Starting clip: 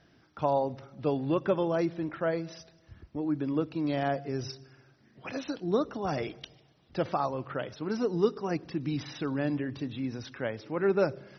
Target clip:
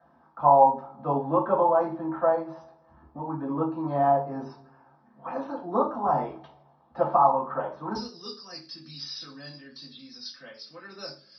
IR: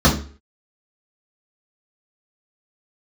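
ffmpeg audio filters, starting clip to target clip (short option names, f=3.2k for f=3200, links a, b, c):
-filter_complex "[0:a]asetnsamples=n=441:p=0,asendcmd='7.95 bandpass f 4800',bandpass=f=900:t=q:w=9.3:csg=0[a];[1:a]atrim=start_sample=2205,afade=t=out:st=0.19:d=0.01,atrim=end_sample=8820[b];[a][b]afir=irnorm=-1:irlink=0,volume=-2dB"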